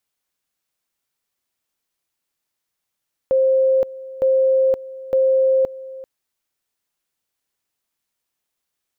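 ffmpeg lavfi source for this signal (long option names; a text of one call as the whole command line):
ffmpeg -f lavfi -i "aevalsrc='pow(10,(-12.5-18.5*gte(mod(t,0.91),0.52))/20)*sin(2*PI*528*t)':duration=2.73:sample_rate=44100" out.wav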